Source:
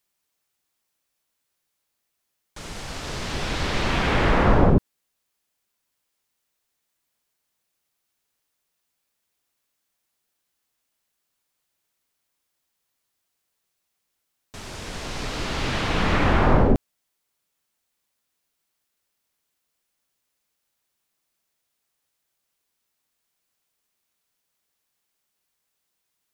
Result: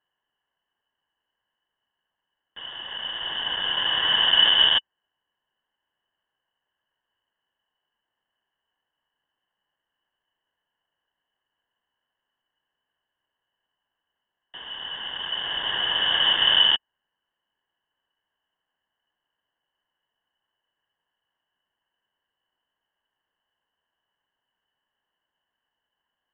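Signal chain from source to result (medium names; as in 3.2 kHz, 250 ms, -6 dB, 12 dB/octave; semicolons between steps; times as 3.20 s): square wave that keeps the level; vowel filter e; frequency inversion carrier 3.5 kHz; trim +9 dB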